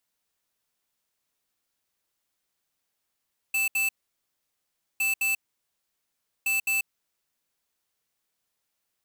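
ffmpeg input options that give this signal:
ffmpeg -f lavfi -i "aevalsrc='0.0562*(2*lt(mod(2640*t,1),0.5)-1)*clip(min(mod(mod(t,1.46),0.21),0.14-mod(mod(t,1.46),0.21))/0.005,0,1)*lt(mod(t,1.46),0.42)':duration=4.38:sample_rate=44100" out.wav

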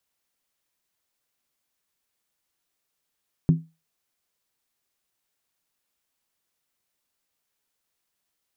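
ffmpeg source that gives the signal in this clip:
ffmpeg -f lavfi -i "aevalsrc='0.299*pow(10,-3*t/0.26)*sin(2*PI*162*t)+0.0944*pow(10,-3*t/0.206)*sin(2*PI*258.2*t)+0.0299*pow(10,-3*t/0.178)*sin(2*PI*346*t)+0.00944*pow(10,-3*t/0.172)*sin(2*PI*372*t)+0.00299*pow(10,-3*t/0.16)*sin(2*PI*429.8*t)':duration=0.63:sample_rate=44100" out.wav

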